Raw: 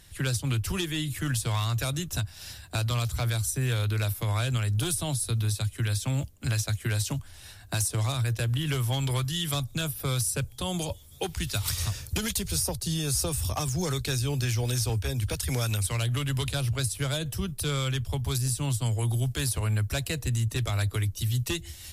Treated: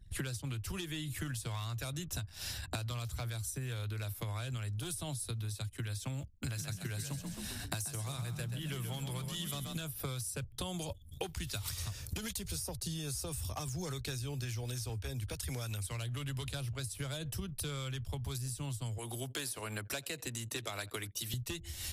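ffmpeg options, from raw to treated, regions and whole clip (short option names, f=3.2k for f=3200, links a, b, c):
-filter_complex "[0:a]asettb=1/sr,asplit=3[a][b][c];[a]atrim=end=6.334[d];[b]atrim=start=6.33:end=9.8,asetpts=PTS-STARTPTS,afade=t=in:d=0.004:c=qsin,afade=t=out:st=3.466:d=0.004:c=qsin,highshelf=f=8.2k:g=5,asplit=6[e][f][g][h][i][j];[f]adelay=132,afreqshift=35,volume=-7dB[k];[g]adelay=264,afreqshift=70,volume=-15.2dB[l];[h]adelay=396,afreqshift=105,volume=-23.4dB[m];[i]adelay=528,afreqshift=140,volume=-31.5dB[n];[j]adelay=660,afreqshift=175,volume=-39.7dB[o];[e][k][l][m][n][o]amix=inputs=6:normalize=0,atrim=end_sample=153027[p];[c]atrim=start=9.796[q];[d][p]acrossfade=d=0.004:c1=hsin:c2=qsin[r];[r][q]acrossfade=d=0.004:c1=qsin:c2=hsin,asettb=1/sr,asplit=3[s][t][u];[s]atrim=end=18.984[v];[t]atrim=start=18.98:end=21.34,asetpts=PTS-STARTPTS,afade=t=in:d=0.004:c=qsin,afade=t=out:st=2.356:d=0.004:c=qsin,highpass=270,aecho=1:1:86:0.0668,atrim=end_sample=104076[w];[u]atrim=start=21.336[x];[v][w]acrossfade=d=0.004:c1=hsin:c2=qsin[y];[y][x]acrossfade=d=0.004:c1=qsin:c2=hsin,anlmdn=0.00631,acompressor=threshold=-41dB:ratio=16,volume=5dB"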